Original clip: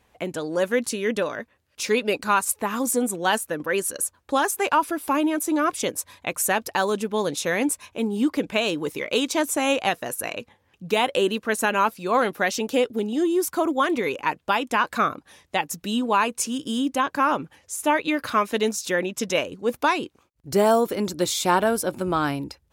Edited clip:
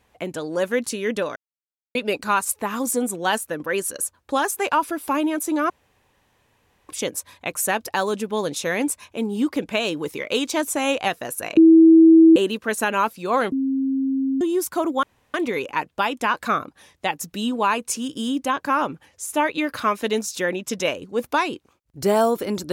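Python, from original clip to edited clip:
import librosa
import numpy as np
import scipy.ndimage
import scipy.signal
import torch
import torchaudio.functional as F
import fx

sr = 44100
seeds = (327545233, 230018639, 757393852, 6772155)

y = fx.edit(x, sr, fx.silence(start_s=1.36, length_s=0.59),
    fx.insert_room_tone(at_s=5.7, length_s=1.19),
    fx.bleep(start_s=10.38, length_s=0.79, hz=325.0, db=-7.0),
    fx.bleep(start_s=12.33, length_s=0.89, hz=268.0, db=-19.0),
    fx.insert_room_tone(at_s=13.84, length_s=0.31), tone=tone)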